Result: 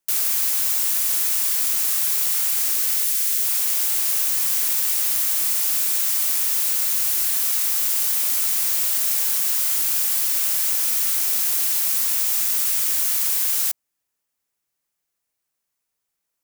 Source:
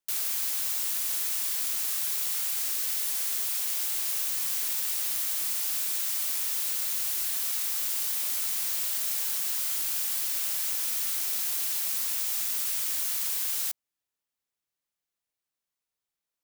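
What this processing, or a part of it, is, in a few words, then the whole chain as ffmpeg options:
exciter from parts: -filter_complex "[0:a]asplit=2[link_01][link_02];[link_02]highpass=frequency=3300:width=0.5412,highpass=frequency=3300:width=1.3066,asoftclip=type=tanh:threshold=-29dB,volume=-8dB[link_03];[link_01][link_03]amix=inputs=2:normalize=0,asettb=1/sr,asplit=3[link_04][link_05][link_06];[link_04]atrim=end=3.034[link_07];[link_05]atrim=start=3.03:end=3.45,asetpts=PTS-STARTPTS,afade=type=in:duration=0.004:curve=qsin,afade=type=out:start_time=0.416:duration=0.004:curve=qsin,equalizer=frequency=820:width_type=o:width=1.1:gain=-12.5[link_08];[link_06]atrim=start=3.446[link_09];[link_07][link_08]acrossfade=duration=0.004:curve1=hsin:curve2=qsin[link_10];[link_10][link_09]acrossfade=duration=0.004:curve1=qsin:curve2=hsin,volume=7dB"

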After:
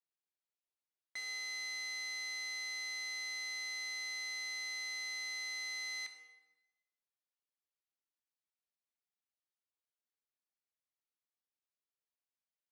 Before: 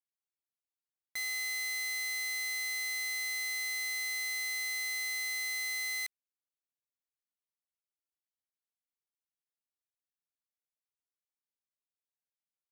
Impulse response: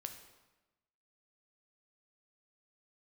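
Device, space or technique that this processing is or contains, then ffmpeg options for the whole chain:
supermarket ceiling speaker: -filter_complex "[0:a]highpass=250,lowpass=5700[link_01];[1:a]atrim=start_sample=2205[link_02];[link_01][link_02]afir=irnorm=-1:irlink=0"

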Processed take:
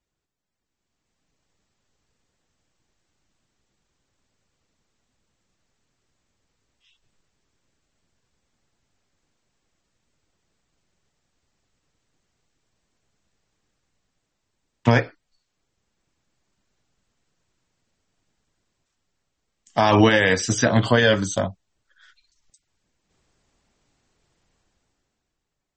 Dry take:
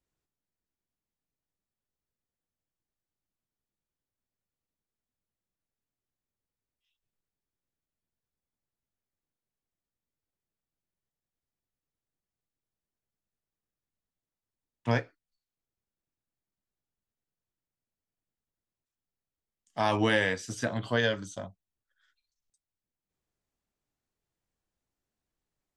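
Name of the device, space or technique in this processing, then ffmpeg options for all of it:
low-bitrate web radio: -af "dynaudnorm=framelen=120:gausssize=17:maxgain=14.5dB,alimiter=limit=-10.5dB:level=0:latency=1:release=92,volume=5.5dB" -ar 44100 -c:a libmp3lame -b:a 32k

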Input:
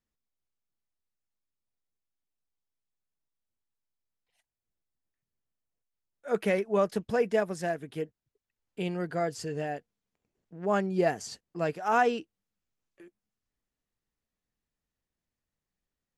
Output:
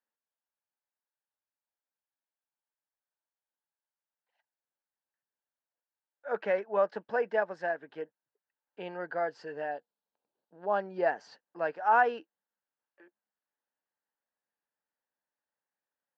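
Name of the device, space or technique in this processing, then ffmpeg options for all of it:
phone earpiece: -filter_complex "[0:a]asettb=1/sr,asplit=3[link_01][link_02][link_03];[link_01]atrim=end=9.714[link_04];[link_02]atrim=start=9.71:end=10.81,asetpts=PTS-STARTPTS,afade=type=in:duration=0.004:curve=qsin,afade=type=out:start_time=1.096:duration=0.004:curve=qsin,equalizer=frequency=2000:width_type=o:width=1:gain=-11,equalizer=frequency=4000:width_type=o:width=1:gain=11,equalizer=frequency=8000:width_type=o:width=1:gain=-10[link_05];[link_03]atrim=start=10.806[link_06];[link_04][link_05]acrossfade=duration=0.004:curve1=hsin:curve2=qsin[link_07];[link_07][link_06]acrossfade=duration=0.004:curve1=qsin:curve2=hsin,highpass=360,equalizer=frequency=390:width_type=q:width=4:gain=-3,equalizer=frequency=560:width_type=q:width=4:gain=5,equalizer=frequency=880:width_type=q:width=4:gain=9,equalizer=frequency=1600:width_type=q:width=4:gain=9,equalizer=frequency=2300:width_type=q:width=4:gain=-5,equalizer=frequency=3500:width_type=q:width=4:gain=-7,lowpass=frequency=4000:width=0.5412,lowpass=frequency=4000:width=1.3066,volume=-4dB"

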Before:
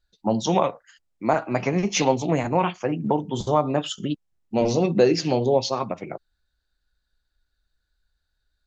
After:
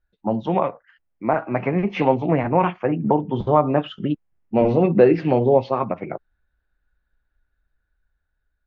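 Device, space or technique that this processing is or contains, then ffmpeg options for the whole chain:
action camera in a waterproof case: -af "lowpass=frequency=2400:width=0.5412,lowpass=frequency=2400:width=1.3066,dynaudnorm=framelen=760:gausssize=5:maxgain=6dB" -ar 32000 -c:a aac -b:a 64k

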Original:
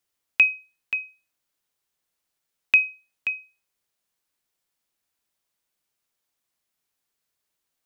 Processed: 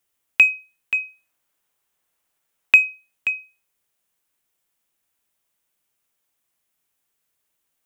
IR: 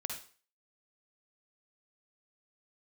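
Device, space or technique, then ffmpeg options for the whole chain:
exciter from parts: -filter_complex "[0:a]asettb=1/sr,asplit=3[link_01][link_02][link_03];[link_01]atrim=end=0.944[link_04];[link_02]atrim=start=0.94:end=2.76,asetpts=PTS-STARTPTS,afade=type=in:duration=0.004:curve=qsin,afade=type=out:start_time=1.816:duration=0.004:curve=qsin,equalizer=frequency=970:width=0.53:gain=4[link_05];[link_03]atrim=start=2.756[link_06];[link_04][link_05]acrossfade=duration=0.004:curve1=hsin:curve2=qsin[link_07];[link_07][link_06]acrossfade=duration=0.004:curve1=qsin:curve2=hsin,asplit=2[link_08][link_09];[link_09]highpass=3000,asoftclip=type=tanh:threshold=-27.5dB,highpass=frequency=3200:width=0.5412,highpass=frequency=3200:width=1.3066,volume=-7dB[link_10];[link_08][link_10]amix=inputs=2:normalize=0,volume=3.5dB"

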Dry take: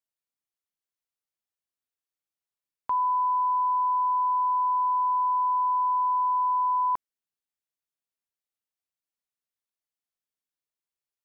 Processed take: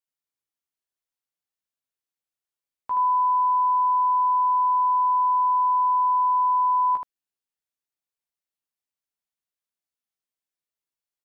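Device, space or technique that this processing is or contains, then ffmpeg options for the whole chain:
slapback doubling: -filter_complex "[0:a]asplit=3[link_01][link_02][link_03];[link_02]adelay=16,volume=-5dB[link_04];[link_03]adelay=76,volume=-4dB[link_05];[link_01][link_04][link_05]amix=inputs=3:normalize=0,volume=-3dB"

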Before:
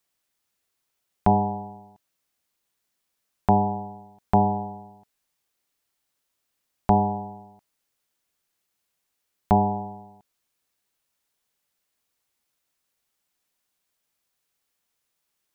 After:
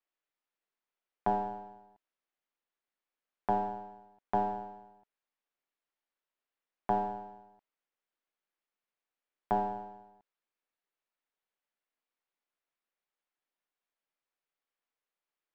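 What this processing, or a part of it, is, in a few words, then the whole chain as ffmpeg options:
crystal radio: -af "highpass=290,lowpass=2600,aeval=exprs='if(lt(val(0),0),0.708*val(0),val(0))':channel_layout=same,volume=-7.5dB"

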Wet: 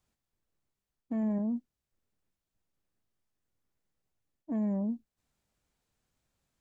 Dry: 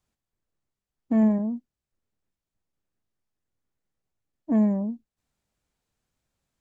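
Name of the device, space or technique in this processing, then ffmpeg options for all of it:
compression on the reversed sound: -af "areverse,acompressor=threshold=-29dB:ratio=6,areverse"

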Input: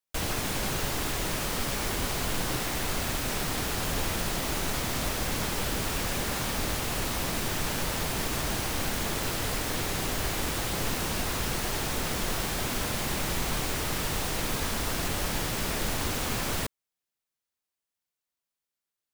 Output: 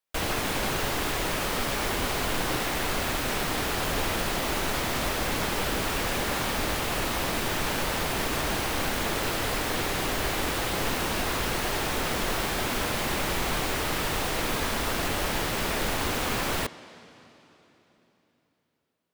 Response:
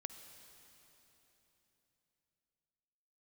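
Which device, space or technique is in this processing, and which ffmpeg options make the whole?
filtered reverb send: -filter_complex "[0:a]asplit=2[link_01][link_02];[link_02]highpass=220,lowpass=4500[link_03];[1:a]atrim=start_sample=2205[link_04];[link_03][link_04]afir=irnorm=-1:irlink=0,volume=0.5dB[link_05];[link_01][link_05]amix=inputs=2:normalize=0"

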